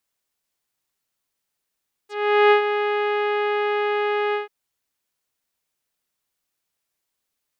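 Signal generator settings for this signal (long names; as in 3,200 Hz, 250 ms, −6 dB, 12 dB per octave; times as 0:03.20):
subtractive voice saw G#4 24 dB per octave, low-pass 2,700 Hz, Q 1, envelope 2.5 octaves, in 0.06 s, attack 421 ms, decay 0.10 s, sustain −9 dB, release 0.14 s, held 2.25 s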